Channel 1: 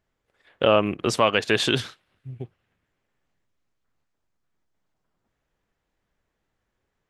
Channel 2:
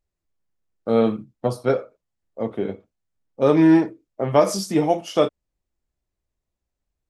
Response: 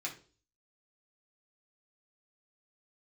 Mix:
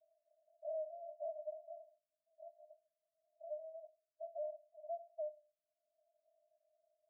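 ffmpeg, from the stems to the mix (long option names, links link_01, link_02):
-filter_complex "[0:a]aeval=exprs='if(lt(val(0),0),0.447*val(0),val(0))':channel_layout=same,flanger=delay=18:depth=7.1:speed=1.4,volume=-3dB,asplit=2[link_01][link_02];[link_02]volume=-13dB[link_03];[1:a]flanger=delay=0.6:depth=8.5:regen=-62:speed=0.64:shape=triangular,volume=-13dB,asplit=2[link_04][link_05];[link_05]volume=-6.5dB[link_06];[2:a]atrim=start_sample=2205[link_07];[link_03][link_06]amix=inputs=2:normalize=0[link_08];[link_08][link_07]afir=irnorm=-1:irlink=0[link_09];[link_01][link_04][link_09]amix=inputs=3:normalize=0,acompressor=mode=upward:threshold=-42dB:ratio=2.5,asuperpass=centerf=640:order=12:qfactor=7.4,alimiter=level_in=12dB:limit=-24dB:level=0:latency=1:release=38,volume=-12dB"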